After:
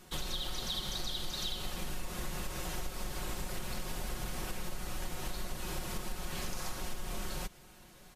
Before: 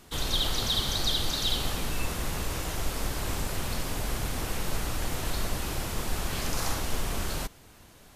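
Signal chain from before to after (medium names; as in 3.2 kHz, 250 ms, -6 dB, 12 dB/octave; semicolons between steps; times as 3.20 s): comb 5.5 ms, depth 61%; compression, threshold -29 dBFS, peak gain reduction 10.5 dB; trim -4 dB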